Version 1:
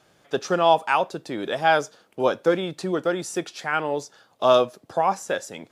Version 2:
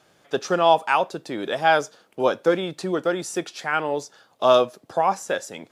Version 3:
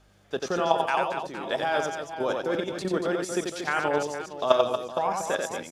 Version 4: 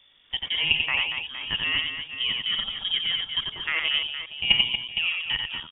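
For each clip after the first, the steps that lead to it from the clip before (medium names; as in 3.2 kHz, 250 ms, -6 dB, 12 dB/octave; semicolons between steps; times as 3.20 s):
bass shelf 120 Hz -5 dB; trim +1 dB
level held to a coarse grid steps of 13 dB; hum 50 Hz, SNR 31 dB; reverse bouncing-ball echo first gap 90 ms, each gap 1.6×, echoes 5
frequency inversion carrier 3.5 kHz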